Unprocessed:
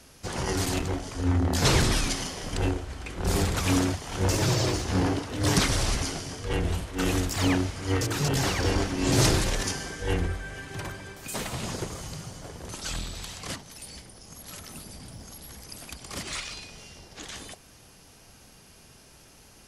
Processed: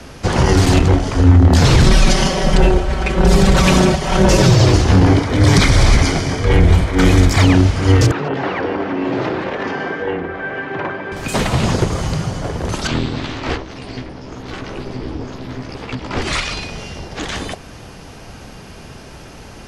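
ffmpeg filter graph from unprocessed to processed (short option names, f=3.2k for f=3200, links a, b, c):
-filter_complex "[0:a]asettb=1/sr,asplit=3[a][b][c];[a]atrim=end=1.864[d];[b]atrim=start=1.86:end=4.51,asetpts=PTS-STARTPTS,afade=t=in:d=0.004:c=qsin,afade=t=out:st=2.646:d=0.004:c=qsin,equalizer=f=590:t=o:w=0.32:g=5,aecho=1:1:5.3:0.88,atrim=end_sample=116865[e];[c]atrim=start=4.506[f];[d][e]acrossfade=d=0.004:c1=hsin:c2=qsin[g];[g][f]acrossfade=d=0.004:c1=qsin:c2=hsin,asettb=1/sr,asplit=3[h][i][j];[h]atrim=end=5.074[k];[i]atrim=start=5.07:end=7.43,asetpts=PTS-STARTPTS,afade=t=in:d=0.004:c=qsin,afade=t=out:st=2.356:d=0.004:c=qsin,equalizer=f=2.3k:t=o:w=0.37:g=7,bandreject=f=2.7k:w=6[l];[j]atrim=start=7.426[m];[k][l]acrossfade=d=0.004:c1=hsin:c2=qsin[n];[n][m]acrossfade=d=0.004:c1=qsin:c2=hsin,asettb=1/sr,asplit=3[o][p][q];[o]atrim=end=8.114[r];[p]atrim=start=8.11:end=11.12,asetpts=PTS-STARTPTS,afade=t=in:d=0.004:c=qsin,afade=t=out:st=3.006:d=0.004:c=qsin,aemphasis=mode=reproduction:type=cd,acompressor=threshold=-31dB:ratio=3:attack=3.2:release=140:knee=1:detection=peak,highpass=280,lowpass=2.5k[s];[q]atrim=start=11.116[t];[r][s]acrossfade=d=0.004:c1=hsin:c2=qsin[u];[u][t]acrossfade=d=0.004:c1=qsin:c2=hsin,asettb=1/sr,asplit=3[v][w][x];[v]atrim=end=12.874[y];[w]atrim=start=12.87:end=16.22,asetpts=PTS-STARTPTS,afade=t=in:d=0.004:c=qsin,afade=t=out:st=3.346:d=0.004:c=qsin,lowpass=4k,asplit=2[z][aa];[aa]adelay=15,volume=-3dB[ab];[z][ab]amix=inputs=2:normalize=0,atrim=end_sample=147735,aeval=exprs='val(0)*sin(2*PI*190*n/s)':c=same[ac];[x]atrim=start=16.216[ad];[y][ac]acrossfade=d=0.004:c1=hsin:c2=qsin[ae];[ae][ad]acrossfade=d=0.004:c1=qsin:c2=hsin,aemphasis=mode=reproduction:type=75fm,acrossover=split=180|3000[af][ag][ah];[ag]acompressor=threshold=-40dB:ratio=1.5[ai];[af][ai][ah]amix=inputs=3:normalize=0,alimiter=level_in=19.5dB:limit=-1dB:release=50:level=0:latency=1,volume=-1dB"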